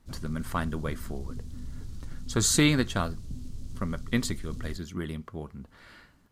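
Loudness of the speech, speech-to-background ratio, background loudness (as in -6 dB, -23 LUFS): -29.5 LUFS, 14.0 dB, -43.5 LUFS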